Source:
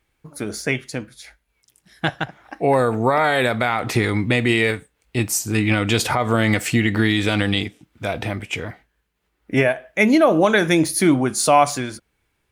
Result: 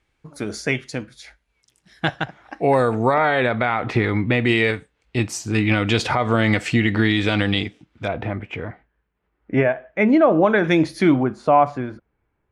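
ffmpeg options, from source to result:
ffmpeg -i in.wav -af "asetnsamples=nb_out_samples=441:pad=0,asendcmd='3.14 lowpass f 2800;4.45 lowpass f 4900;8.08 lowpass f 1800;10.64 lowpass f 3300;11.23 lowpass f 1300',lowpass=7200" out.wav

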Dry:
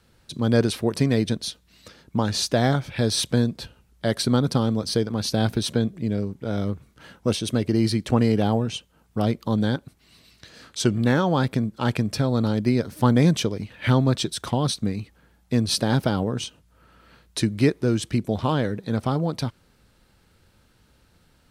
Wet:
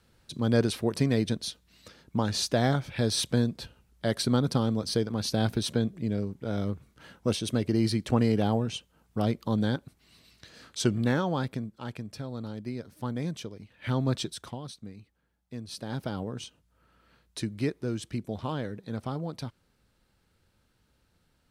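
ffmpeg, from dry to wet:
ffmpeg -i in.wav -af "volume=12.5dB,afade=type=out:start_time=10.9:duration=0.97:silence=0.298538,afade=type=in:start_time=13.75:duration=0.38:silence=0.354813,afade=type=out:start_time=14.13:duration=0.49:silence=0.251189,afade=type=in:start_time=15.71:duration=0.48:silence=0.398107" out.wav

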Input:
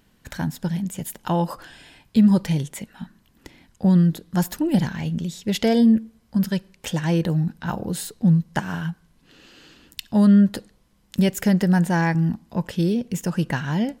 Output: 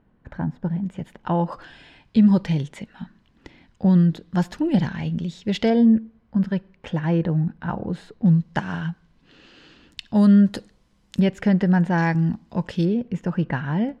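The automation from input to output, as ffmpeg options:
ffmpeg -i in.wav -af "asetnsamples=nb_out_samples=441:pad=0,asendcmd='0.84 lowpass f 2100;1.52 lowpass f 4000;5.7 lowpass f 2000;8.26 lowpass f 4400;10.16 lowpass f 7500;11.2 lowpass f 2800;11.98 lowpass f 5400;12.85 lowpass f 2100',lowpass=1200" out.wav

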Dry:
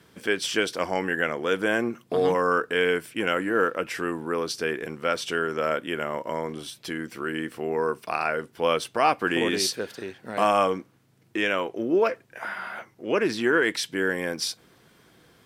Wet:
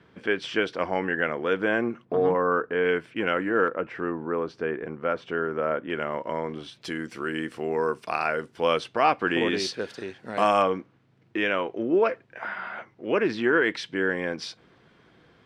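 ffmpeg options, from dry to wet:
ffmpeg -i in.wav -af "asetnsamples=nb_out_samples=441:pad=0,asendcmd='2.05 lowpass f 1500;2.85 lowpass f 2800;3.68 lowpass f 1500;5.9 lowpass f 3300;6.82 lowpass f 7700;8.8 lowpass f 4100;9.79 lowpass f 6900;10.62 lowpass f 3300',lowpass=2700" out.wav

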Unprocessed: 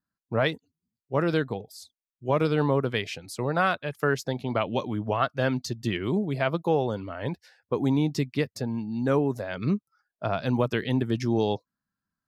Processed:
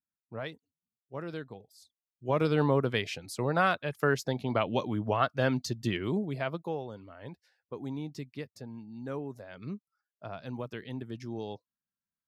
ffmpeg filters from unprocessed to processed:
ffmpeg -i in.wav -af "volume=-2dB,afade=type=in:start_time=1.73:duration=0.83:silence=0.251189,afade=type=out:start_time=5.79:duration=1.06:silence=0.266073" out.wav

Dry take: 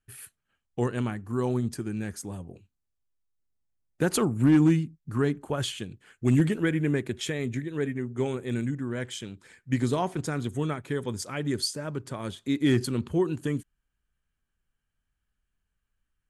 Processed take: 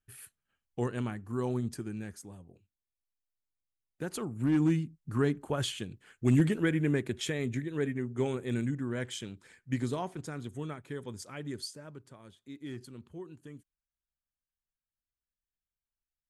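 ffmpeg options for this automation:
ffmpeg -i in.wav -af "volume=4.5dB,afade=type=out:start_time=1.78:duration=0.58:silence=0.446684,afade=type=in:start_time=4.23:duration=0.87:silence=0.334965,afade=type=out:start_time=9.21:duration=0.95:silence=0.446684,afade=type=out:start_time=11.41:duration=0.83:silence=0.334965" out.wav

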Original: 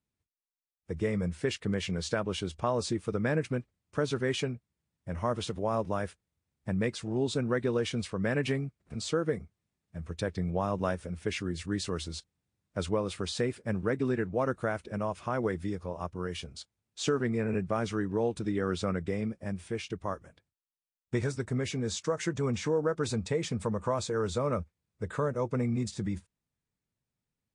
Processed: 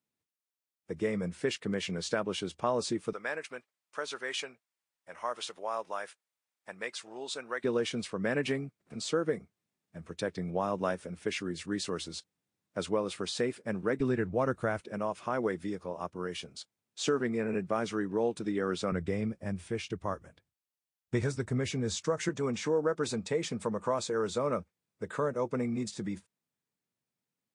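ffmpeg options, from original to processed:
ffmpeg -i in.wav -af "asetnsamples=nb_out_samples=441:pad=0,asendcmd='3.13 highpass f 760;7.64 highpass f 190;14 highpass f 49;14.8 highpass f 190;18.92 highpass f 50;22.29 highpass f 190',highpass=180" out.wav

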